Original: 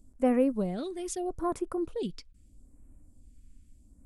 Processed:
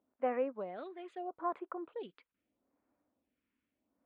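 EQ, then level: running mean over 8 samples; HPF 740 Hz 12 dB/oct; air absorption 350 m; +2.0 dB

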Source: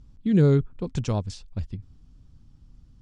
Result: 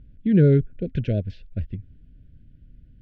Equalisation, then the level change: brick-wall FIR band-stop 690–1400 Hz; LPF 2900 Hz 24 dB/oct; +2.5 dB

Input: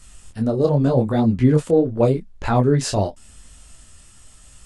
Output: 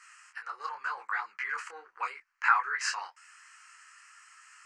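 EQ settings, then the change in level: inverse Chebyshev high-pass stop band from 260 Hz, stop band 70 dB; air absorption 170 m; fixed phaser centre 1500 Hz, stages 4; +9.0 dB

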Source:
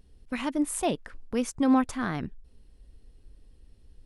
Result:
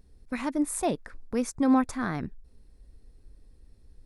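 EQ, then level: bell 3000 Hz -12 dB 0.27 oct; 0.0 dB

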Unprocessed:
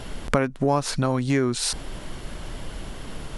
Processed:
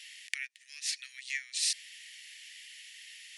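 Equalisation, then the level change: rippled Chebyshev high-pass 1800 Hz, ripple 3 dB; high shelf 7200 Hz -6 dB; 0.0 dB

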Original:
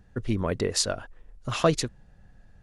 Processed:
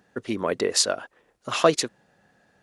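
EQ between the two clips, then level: HPF 300 Hz 12 dB/oct; +4.5 dB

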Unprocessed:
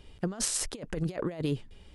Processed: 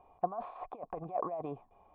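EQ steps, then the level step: vocal tract filter a; low shelf 140 Hz -9.5 dB; +16.0 dB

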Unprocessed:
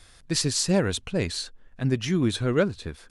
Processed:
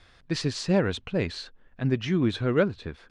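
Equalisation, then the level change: LPF 3400 Hz 12 dB/oct; low shelf 68 Hz -6 dB; 0.0 dB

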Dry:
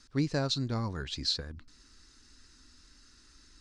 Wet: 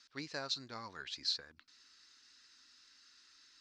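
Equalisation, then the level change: dynamic EQ 3200 Hz, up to -7 dB, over -48 dBFS, Q 1.4; band-pass 3900 Hz, Q 0.63; air absorption 79 m; +2.0 dB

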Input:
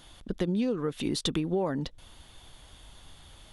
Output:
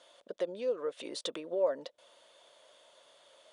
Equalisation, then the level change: resonant high-pass 560 Hz, resonance Q 4.9; Butterworth band-stop 790 Hz, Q 6.7; steep low-pass 10000 Hz 96 dB/oct; -7.5 dB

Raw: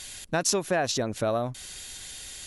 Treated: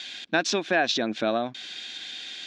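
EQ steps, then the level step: speaker cabinet 210–5000 Hz, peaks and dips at 220 Hz +9 dB, 320 Hz +9 dB, 730 Hz +6 dB, 1600 Hz +9 dB, 2400 Hz +8 dB, 3500 Hz +10 dB; high shelf 3700 Hz +7.5 dB; -3.0 dB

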